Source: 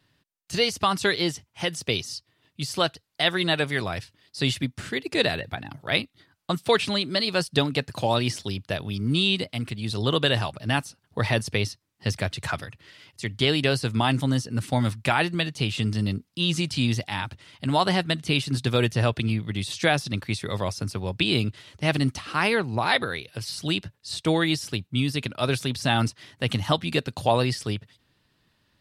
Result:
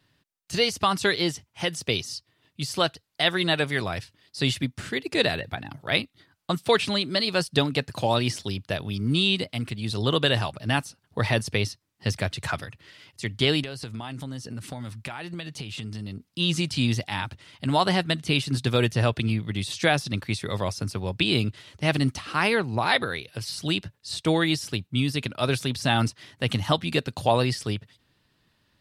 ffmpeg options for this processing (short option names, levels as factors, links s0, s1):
-filter_complex "[0:a]asettb=1/sr,asplit=3[s0][s1][s2];[s0]atrim=end=13.624[s3];[s1]atrim=start=13.62:end=16.29,asetpts=PTS-STARTPTS,afade=t=in:d=0.004:c=qsin,afade=t=out:st=2.666:d=0.004:c=qsin,acompressor=threshold=0.0282:ratio=8:attack=3.2:release=140:knee=1:detection=peak[s4];[s2]atrim=start=16.286[s5];[s3][s4]acrossfade=d=0.004:c1=hsin:c2=qsin[s6];[s6][s5]acrossfade=d=0.004:c1=qsin:c2=hsin"